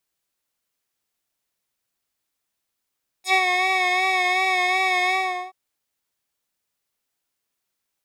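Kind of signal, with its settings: synth patch with vibrato F#5, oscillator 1 square, oscillator 2 saw, interval +7 st, oscillator 2 level -11.5 dB, sub -3 dB, noise -20 dB, filter bandpass, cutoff 1.1 kHz, Q 1.4, filter envelope 3.5 oct, filter decay 0.07 s, filter sustain 25%, attack 102 ms, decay 0.06 s, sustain -5 dB, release 0.41 s, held 1.87 s, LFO 2.7 Hz, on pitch 41 cents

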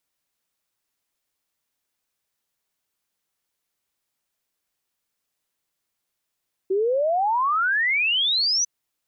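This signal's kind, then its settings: log sweep 370 Hz -> 6.1 kHz 1.95 s -18.5 dBFS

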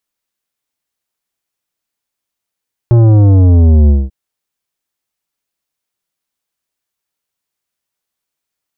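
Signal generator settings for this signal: sub drop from 120 Hz, over 1.19 s, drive 11.5 dB, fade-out 0.21 s, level -5 dB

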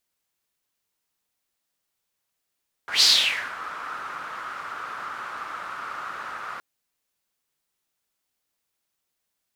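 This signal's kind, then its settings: whoosh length 3.72 s, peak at 0.14 s, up 0.13 s, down 0.57 s, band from 1.3 kHz, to 4.6 kHz, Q 5.3, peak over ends 18.5 dB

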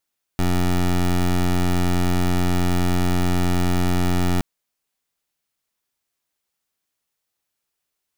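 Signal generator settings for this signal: pulse 89.4 Hz, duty 17% -18.5 dBFS 4.02 s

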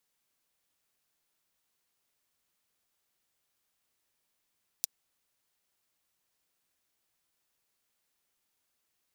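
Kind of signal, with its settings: closed hi-hat, high-pass 4.9 kHz, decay 0.02 s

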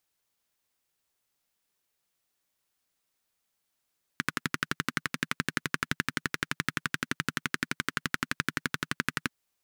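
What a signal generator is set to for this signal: single-cylinder engine model, steady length 5.12 s, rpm 1400, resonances 160/240/1500 Hz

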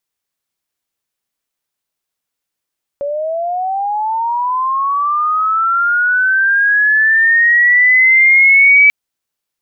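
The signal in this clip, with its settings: sweep linear 560 Hz -> 2.3 kHz -16.5 dBFS -> -4 dBFS 5.89 s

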